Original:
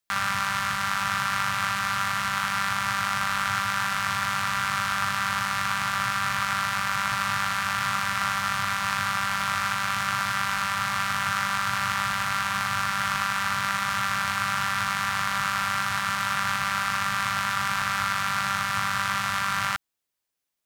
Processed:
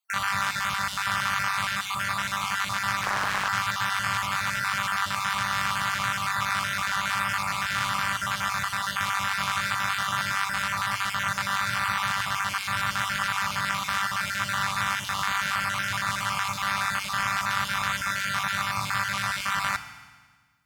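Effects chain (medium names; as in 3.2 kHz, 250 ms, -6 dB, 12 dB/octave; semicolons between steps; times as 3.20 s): random holes in the spectrogram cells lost 27%; FDN reverb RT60 1.5 s, low-frequency decay 1.25×, high-frequency decay 0.95×, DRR 8.5 dB; 3.03–3.49 s: loudspeaker Doppler distortion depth 0.67 ms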